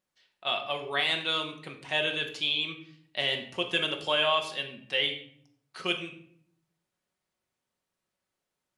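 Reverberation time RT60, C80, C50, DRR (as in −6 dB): 0.60 s, 12.5 dB, 9.5 dB, 3.0 dB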